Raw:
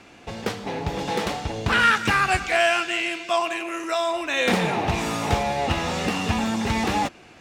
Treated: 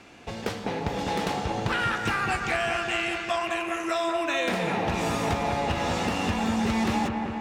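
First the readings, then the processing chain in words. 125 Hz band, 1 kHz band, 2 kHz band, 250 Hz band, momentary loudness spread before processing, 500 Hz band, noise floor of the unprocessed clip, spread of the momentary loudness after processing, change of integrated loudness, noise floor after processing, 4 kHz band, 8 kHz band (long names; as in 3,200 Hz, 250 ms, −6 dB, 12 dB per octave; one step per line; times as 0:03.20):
−3.0 dB, −3.5 dB, −5.5 dB, −1.0 dB, 10 LU, −3.0 dB, −48 dBFS, 4 LU, −4.0 dB, −37 dBFS, −5.0 dB, −5.0 dB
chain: downward compressor, threshold −23 dBFS, peak gain reduction 9.5 dB
on a send: delay with a low-pass on its return 201 ms, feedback 73%, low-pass 2,000 Hz, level −5 dB
on the sum: level −1.5 dB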